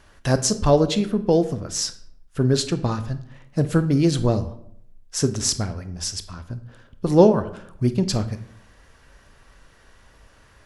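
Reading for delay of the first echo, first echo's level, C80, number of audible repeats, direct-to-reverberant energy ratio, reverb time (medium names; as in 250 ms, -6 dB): no echo, no echo, 17.0 dB, no echo, 11.0 dB, 0.70 s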